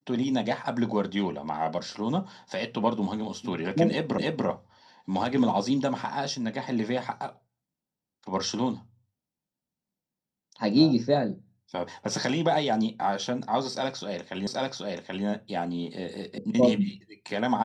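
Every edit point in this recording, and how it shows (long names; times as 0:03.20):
0:04.18: the same again, the last 0.29 s
0:14.47: the same again, the last 0.78 s
0:16.38: cut off before it has died away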